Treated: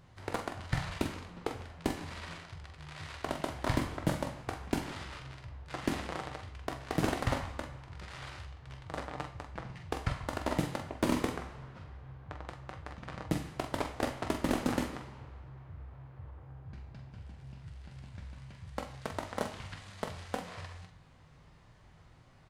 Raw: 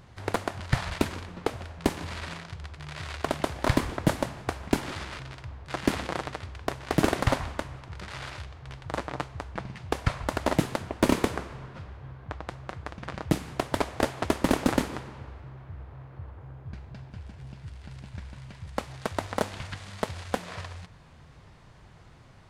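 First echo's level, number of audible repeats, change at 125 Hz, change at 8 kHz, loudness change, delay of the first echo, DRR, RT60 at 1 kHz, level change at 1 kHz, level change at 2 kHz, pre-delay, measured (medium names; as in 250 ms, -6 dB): -7.5 dB, 1, -6.0 dB, -7.0 dB, -7.0 dB, 45 ms, 4.0 dB, 0.45 s, -6.5 dB, -6.5 dB, 14 ms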